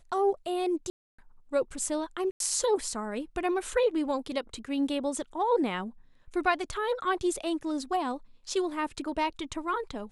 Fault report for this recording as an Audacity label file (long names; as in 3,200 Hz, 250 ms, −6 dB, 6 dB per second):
0.900000	1.190000	drop-out 285 ms
2.310000	2.400000	drop-out 92 ms